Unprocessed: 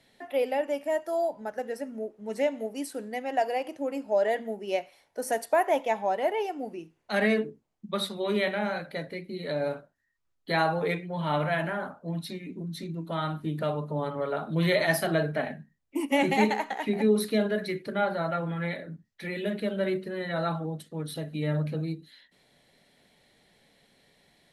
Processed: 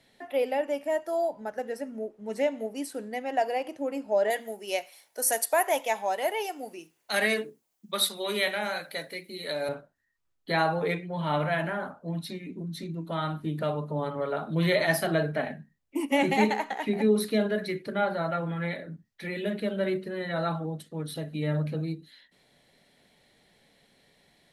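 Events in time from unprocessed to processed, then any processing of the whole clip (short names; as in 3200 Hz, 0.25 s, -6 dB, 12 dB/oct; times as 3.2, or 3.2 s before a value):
4.3–9.69 RIAA curve recording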